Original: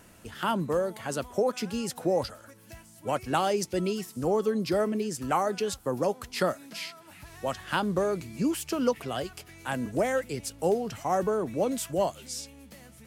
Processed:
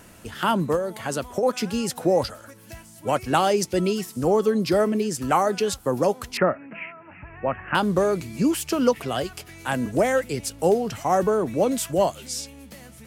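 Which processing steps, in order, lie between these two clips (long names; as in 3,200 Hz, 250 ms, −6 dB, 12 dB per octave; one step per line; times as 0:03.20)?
0:00.75–0:01.43: downward compressor, threshold −28 dBFS, peak gain reduction 7.5 dB
0:06.37–0:07.75: Butterworth low-pass 2,700 Hz 96 dB per octave
level +6 dB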